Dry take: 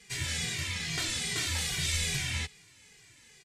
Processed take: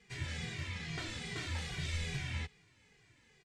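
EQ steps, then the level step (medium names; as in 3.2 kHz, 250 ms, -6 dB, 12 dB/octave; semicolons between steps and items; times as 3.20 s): distance through air 51 m; treble shelf 2.6 kHz -11 dB; -3.0 dB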